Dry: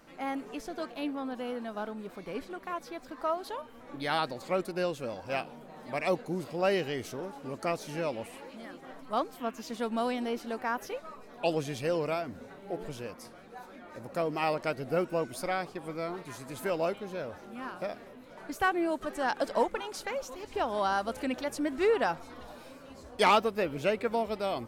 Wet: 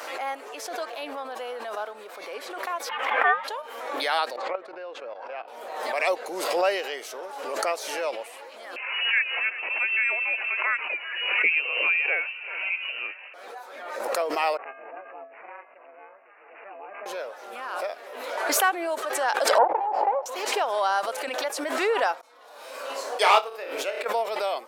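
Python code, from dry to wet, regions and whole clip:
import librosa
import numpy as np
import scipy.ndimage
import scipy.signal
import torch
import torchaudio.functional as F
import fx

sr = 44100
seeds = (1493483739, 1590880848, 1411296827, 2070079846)

y = fx.chain(x, sr, fx.curve_eq(hz=(120.0, 2800.0, 4000.0), db=(0, 13, -13)),
    fx.ring_mod(carrier_hz=540.0), at=(2.89, 3.48))
y = fx.chain(y, sr, fx.lowpass(hz=2100.0, slope=12),
    fx.level_steps(step_db=13), at=(4.36, 5.48))
y = fx.chain(y, sr, fx.echo_single(ms=379, db=-19.5),
    fx.freq_invert(carrier_hz=2900),
    fx.peak_eq(hz=300.0, db=8.0, octaves=2.5), at=(8.76, 13.34))
y = fx.chain(y, sr, fx.comb_fb(f0_hz=470.0, decay_s=0.4, harmonics='all', damping=0.0, mix_pct=80),
    fx.ring_mod(carrier_hz=200.0),
    fx.resample_bad(factor=8, down='none', up='filtered'), at=(14.57, 17.06))
y = fx.chain(y, sr, fx.lower_of_two(delay_ms=0.4),
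    fx.lowpass_res(hz=830.0, q=8.2), at=(19.58, 20.26))
y = fx.chain(y, sr, fx.peak_eq(hz=200.0, db=-3.5, octaves=0.26),
    fx.room_flutter(wall_m=5.0, rt60_s=0.32),
    fx.upward_expand(threshold_db=-37.0, expansion=2.5), at=(22.21, 24.06))
y = scipy.signal.sosfilt(scipy.signal.butter(4, 490.0, 'highpass', fs=sr, output='sos'), y)
y = fx.pre_swell(y, sr, db_per_s=39.0)
y = y * librosa.db_to_amplitude(5.0)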